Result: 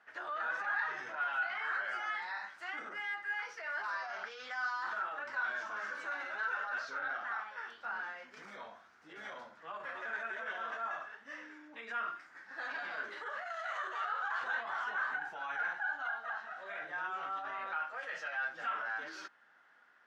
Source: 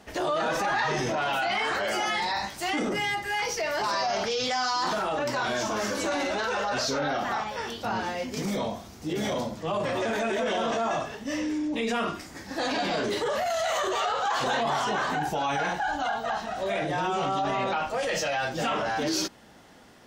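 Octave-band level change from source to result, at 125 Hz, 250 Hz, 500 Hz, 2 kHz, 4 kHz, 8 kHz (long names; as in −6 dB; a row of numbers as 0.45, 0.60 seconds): below −30 dB, −28.5 dB, −21.0 dB, −4.5 dB, −20.0 dB, below −25 dB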